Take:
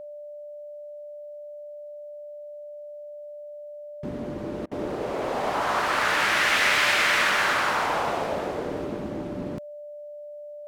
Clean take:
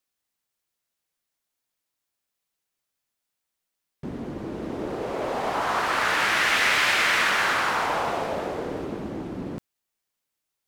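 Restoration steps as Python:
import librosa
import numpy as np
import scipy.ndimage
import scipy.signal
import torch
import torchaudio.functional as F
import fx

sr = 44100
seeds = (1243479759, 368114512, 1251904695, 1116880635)

y = fx.notch(x, sr, hz=590.0, q=30.0)
y = fx.fix_interpolate(y, sr, at_s=(4.66,), length_ms=52.0)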